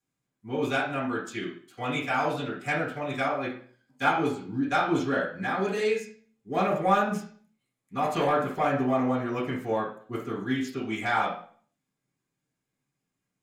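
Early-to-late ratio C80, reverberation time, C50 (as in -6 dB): 11.0 dB, 0.50 s, 6.5 dB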